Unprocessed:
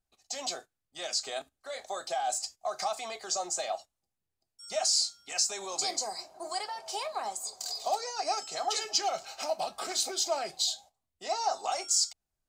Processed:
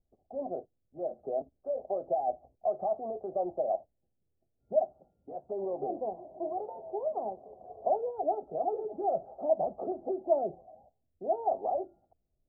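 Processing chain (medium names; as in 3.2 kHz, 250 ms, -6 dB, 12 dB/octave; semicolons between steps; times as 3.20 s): steep low-pass 650 Hz 36 dB/octave; trim +8.5 dB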